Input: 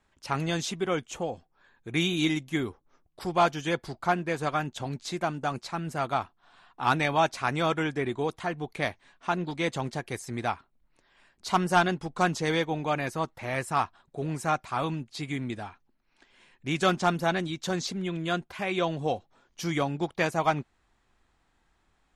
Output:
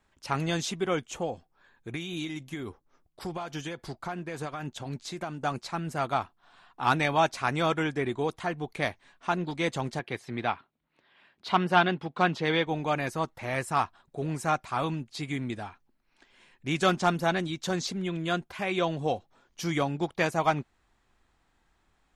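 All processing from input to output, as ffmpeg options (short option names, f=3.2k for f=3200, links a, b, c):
-filter_complex "[0:a]asettb=1/sr,asplit=3[a][b][c];[a]atrim=end=1.914[d];[b]atrim=start=1.91:end=5.4,asetpts=PTS-STARTPTS,afade=t=in:d=0.004:c=qsin,afade=t=out:st=3.486:d=0.004:c=qsin,acompressor=threshold=-29dB:ratio=12:attack=3.2:release=140:knee=1:detection=peak,tremolo=f=3.6:d=0.29[e];[c]atrim=start=5.396[f];[d][e]acrossfade=d=0.004:c1=hsin:c2=qsin[g];[g][f]acrossfade=d=0.004:c1=qsin:c2=hsin,asettb=1/sr,asplit=3[h][i][j];[h]atrim=end=9.994[k];[i]atrim=start=9.99:end=12.67,asetpts=PTS-STARTPTS,afade=t=in:d=0.004:c=qsin,afade=t=out:st=2.676:d=0.004:c=qsin,highpass=110,highshelf=f=5k:t=q:w=1.5:g=-12.5[l];[j]atrim=start=12.666[m];[k][l]acrossfade=d=0.004:c1=hsin:c2=qsin[n];[n][m]acrossfade=d=0.004:c1=qsin:c2=hsin"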